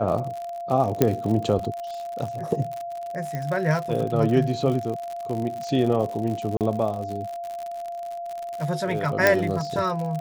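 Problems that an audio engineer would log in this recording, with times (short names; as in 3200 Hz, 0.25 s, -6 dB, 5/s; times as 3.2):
crackle 76/s -29 dBFS
tone 690 Hz -30 dBFS
1.02 pop -4 dBFS
3.35 pop -17 dBFS
6.57–6.61 gap 38 ms
9.27 pop -3 dBFS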